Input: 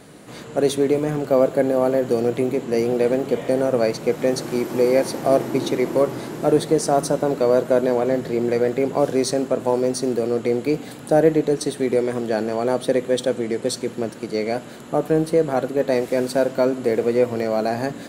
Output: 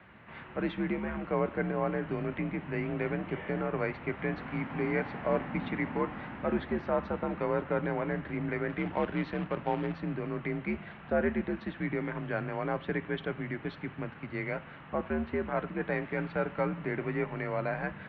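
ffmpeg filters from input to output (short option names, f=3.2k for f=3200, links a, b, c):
-filter_complex "[0:a]equalizer=f=125:t=o:w=1:g=-5,equalizer=f=500:t=o:w=1:g=-9,equalizer=f=1k:t=o:w=1:g=4,equalizer=f=2k:t=o:w=1:g=6,asettb=1/sr,asplit=3[a][b][c];[a]atrim=end=8.694[d];[b]atrim=start=8.69:end=10.01,asetpts=PTS-STARTPTS,afade=t=in:d=0.004:c=qsin,afade=t=out:st=1.316:d=0.004:c=qsin,acrusher=bits=2:mode=log:mix=0:aa=0.000001[e];[c]atrim=start=10.006[f];[d][e]acrossfade=d=0.004:c1=hsin:c2=qsin[g];[g][f]acrossfade=d=0.004:c1=qsin:c2=hsin,highpass=f=160:t=q:w=0.5412,highpass=f=160:t=q:w=1.307,lowpass=f=3k:t=q:w=0.5176,lowpass=f=3k:t=q:w=0.7071,lowpass=f=3k:t=q:w=1.932,afreqshift=-87,volume=-8dB"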